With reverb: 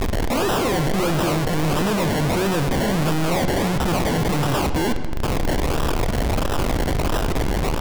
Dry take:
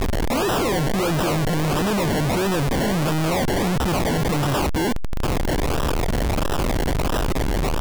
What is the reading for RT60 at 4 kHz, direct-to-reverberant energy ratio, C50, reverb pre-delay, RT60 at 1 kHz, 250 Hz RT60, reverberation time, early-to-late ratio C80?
1.2 s, 9.0 dB, 9.5 dB, 33 ms, 1.5 s, 2.1 s, 1.6 s, 11.0 dB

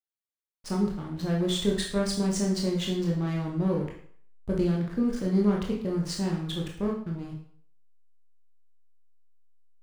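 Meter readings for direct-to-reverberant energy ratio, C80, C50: -1.5 dB, 9.5 dB, 5.0 dB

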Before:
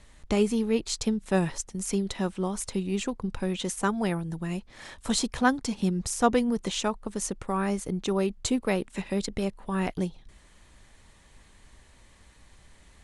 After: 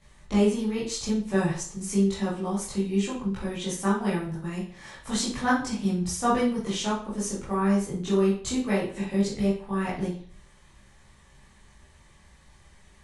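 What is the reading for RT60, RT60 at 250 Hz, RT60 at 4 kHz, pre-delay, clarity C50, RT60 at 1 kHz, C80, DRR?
0.45 s, 0.45 s, 0.40 s, 15 ms, 4.5 dB, 0.45 s, 9.5 dB, -10.0 dB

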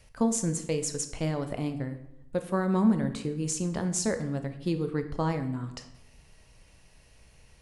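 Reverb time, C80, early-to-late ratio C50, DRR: 0.85 s, 13.5 dB, 11.5 dB, 7.5 dB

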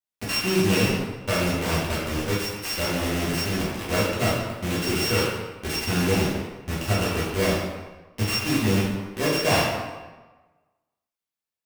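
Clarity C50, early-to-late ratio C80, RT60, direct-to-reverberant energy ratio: 0.0 dB, 3.0 dB, 1.2 s, -8.0 dB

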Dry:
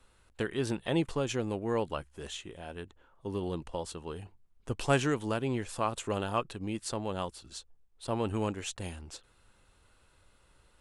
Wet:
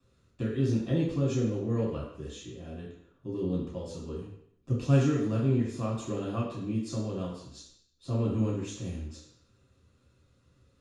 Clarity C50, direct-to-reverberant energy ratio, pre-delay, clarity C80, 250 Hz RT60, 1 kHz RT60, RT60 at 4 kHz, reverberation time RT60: 2.5 dB, -6.5 dB, 3 ms, 6.0 dB, 0.65 s, 0.70 s, 0.70 s, 0.70 s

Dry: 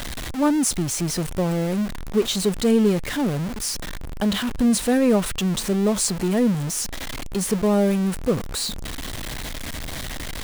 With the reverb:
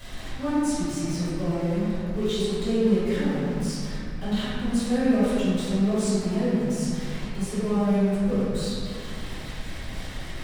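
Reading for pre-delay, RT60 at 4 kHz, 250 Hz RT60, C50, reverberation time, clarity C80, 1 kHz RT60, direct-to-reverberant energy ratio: 3 ms, 1.4 s, 3.0 s, -5.0 dB, 2.3 s, -2.0 dB, 2.1 s, -15.0 dB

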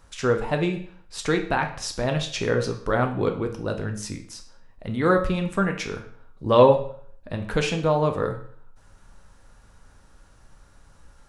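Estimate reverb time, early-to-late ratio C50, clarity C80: 0.55 s, 10.0 dB, 13.5 dB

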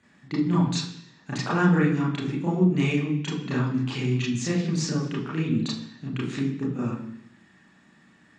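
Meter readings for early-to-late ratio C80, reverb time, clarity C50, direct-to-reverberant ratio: 8.0 dB, 0.70 s, 4.5 dB, -7.0 dB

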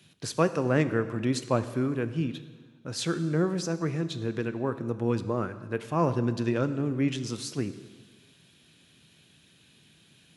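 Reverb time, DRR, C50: 1.5 s, 11.0 dB, 13.0 dB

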